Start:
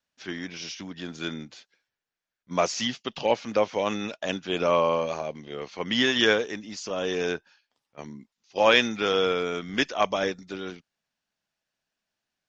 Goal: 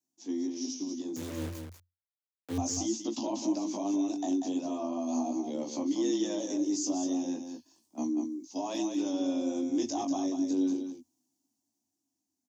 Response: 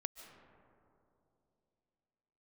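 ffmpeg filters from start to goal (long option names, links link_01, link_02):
-filter_complex "[0:a]firequalizer=gain_entry='entry(110,0);entry(160,13);entry(250,6);entry(360,-13);entry(610,-5);entry(920,-7);entry(1300,-26);entry(6300,6)':delay=0.05:min_phase=1,dynaudnorm=framelen=220:gausssize=17:maxgain=14dB,alimiter=limit=-22dB:level=0:latency=1:release=126,flanger=delay=15.5:depth=5.9:speed=0.34,asettb=1/sr,asplit=3[link_01][link_02][link_03];[link_01]atrim=end=1.164[link_04];[link_02]atrim=start=1.16:end=2.58,asetpts=PTS-STARTPTS,afade=type=in:duration=0.004:curve=qsin,afade=type=out:start_time=1.416:duration=0.004:curve=qsin,acrusher=bits=4:dc=4:mix=0:aa=0.000001[link_05];[link_03]atrim=start=2.576[link_06];[link_04][link_05]acrossfade=duration=0.004:curve1=hsin:curve2=qsin[link_07];[link_07][link_06]acrossfade=duration=0.004:curve1=qsin:curve2=hsin,afreqshift=88,aecho=1:1:40|191:0.119|0.447"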